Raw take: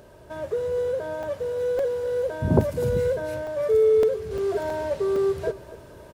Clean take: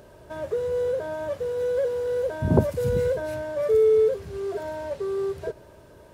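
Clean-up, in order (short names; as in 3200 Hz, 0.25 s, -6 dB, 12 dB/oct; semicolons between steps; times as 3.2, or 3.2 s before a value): interpolate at 1.23/1.79/2.61/3.47/4.03/4.38/4.7/5.16, 2.7 ms; inverse comb 0.251 s -17 dB; gain correction -4.5 dB, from 4.31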